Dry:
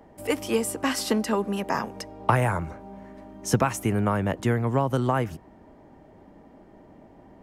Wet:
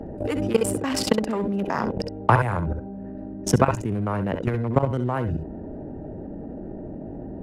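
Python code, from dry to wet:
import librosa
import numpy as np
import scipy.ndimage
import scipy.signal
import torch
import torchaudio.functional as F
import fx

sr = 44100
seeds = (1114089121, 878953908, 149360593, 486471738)

y = fx.wiener(x, sr, points=41)
y = fx.high_shelf(y, sr, hz=7100.0, db=-8.0)
y = fx.level_steps(y, sr, step_db=21)
y = fx.echo_multitap(y, sr, ms=(65, 67), db=(-11.5, -16.5))
y = fx.env_flatten(y, sr, amount_pct=50)
y = F.gain(torch.from_numpy(y), 6.0).numpy()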